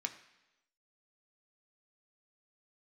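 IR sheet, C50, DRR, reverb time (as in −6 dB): 12.5 dB, 5.0 dB, 1.0 s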